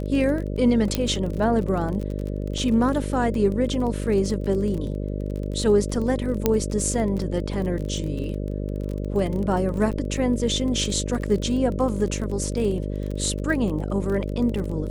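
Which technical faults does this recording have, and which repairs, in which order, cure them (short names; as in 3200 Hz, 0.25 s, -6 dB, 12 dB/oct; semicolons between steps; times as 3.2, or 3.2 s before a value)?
buzz 50 Hz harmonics 12 -28 dBFS
crackle 29/s -29 dBFS
0.95 pop -8 dBFS
2.58 gap 3.1 ms
6.46 pop -5 dBFS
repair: de-click; de-hum 50 Hz, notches 12; interpolate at 2.58, 3.1 ms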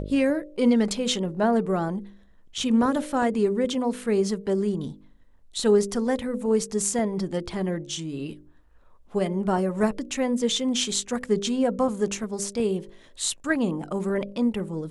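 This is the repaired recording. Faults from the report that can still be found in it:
none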